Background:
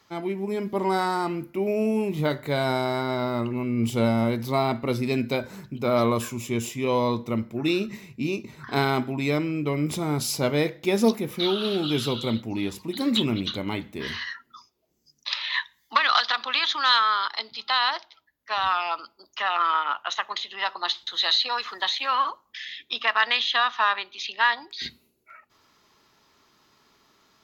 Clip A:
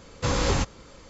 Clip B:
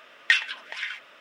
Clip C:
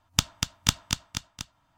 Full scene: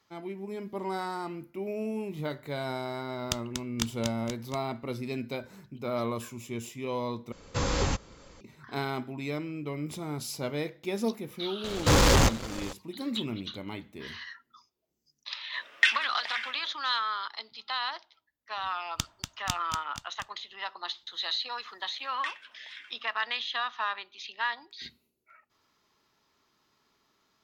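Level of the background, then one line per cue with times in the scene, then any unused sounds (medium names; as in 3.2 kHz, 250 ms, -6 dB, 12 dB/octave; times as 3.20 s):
background -9.5 dB
3.13 s: add C -9 dB + warped record 78 rpm, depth 100 cents
7.32 s: replace with A -4 dB
11.64 s: add A -6 dB + waveshaping leveller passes 5
15.53 s: add B -2 dB + high-pass 170 Hz
18.81 s: add C -9.5 dB
21.94 s: add B -16 dB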